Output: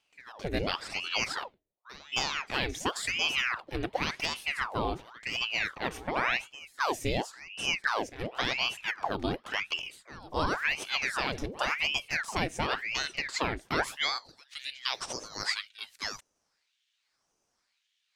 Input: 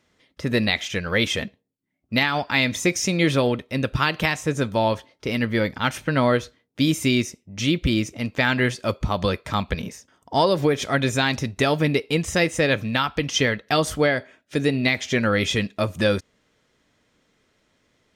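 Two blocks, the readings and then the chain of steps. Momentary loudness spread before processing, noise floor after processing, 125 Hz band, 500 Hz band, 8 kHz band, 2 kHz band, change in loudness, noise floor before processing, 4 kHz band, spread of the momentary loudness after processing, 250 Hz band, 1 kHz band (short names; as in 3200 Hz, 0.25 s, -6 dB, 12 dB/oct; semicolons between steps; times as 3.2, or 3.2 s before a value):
7 LU, -78 dBFS, -17.0 dB, -14.0 dB, -8.5 dB, -6.5 dB, -9.0 dB, -68 dBFS, -5.5 dB, 9 LU, -16.5 dB, -6.5 dB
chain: pre-echo 0.267 s -18 dB; high-pass sweep 77 Hz -> 3100 Hz, 13.51–14.39; ring modulator with a swept carrier 1500 Hz, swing 90%, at 0.92 Hz; gain -8 dB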